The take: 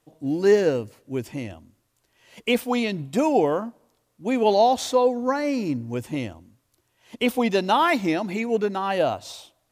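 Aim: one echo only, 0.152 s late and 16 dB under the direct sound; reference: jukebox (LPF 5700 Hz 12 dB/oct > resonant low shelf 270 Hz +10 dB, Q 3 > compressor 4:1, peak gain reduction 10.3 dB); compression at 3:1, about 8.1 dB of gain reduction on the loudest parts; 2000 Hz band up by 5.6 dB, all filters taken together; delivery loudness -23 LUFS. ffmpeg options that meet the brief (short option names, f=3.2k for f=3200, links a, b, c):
-af "equalizer=f=2k:t=o:g=7,acompressor=threshold=-24dB:ratio=3,lowpass=5.7k,lowshelf=f=270:t=q:w=3:g=10,aecho=1:1:152:0.158,acompressor=threshold=-22dB:ratio=4,volume=3.5dB"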